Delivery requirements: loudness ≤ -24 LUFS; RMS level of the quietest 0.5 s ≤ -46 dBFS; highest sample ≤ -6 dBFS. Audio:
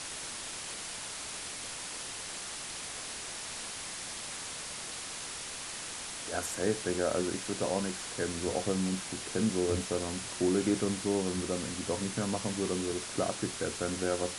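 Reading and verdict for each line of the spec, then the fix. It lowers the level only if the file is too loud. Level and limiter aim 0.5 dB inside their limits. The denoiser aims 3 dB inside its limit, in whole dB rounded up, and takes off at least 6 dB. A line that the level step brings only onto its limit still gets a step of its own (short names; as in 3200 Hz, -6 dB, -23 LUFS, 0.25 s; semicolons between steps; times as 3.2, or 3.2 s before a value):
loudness -34.0 LUFS: OK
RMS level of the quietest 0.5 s -41 dBFS: fail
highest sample -16.0 dBFS: OK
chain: denoiser 8 dB, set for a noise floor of -41 dBFS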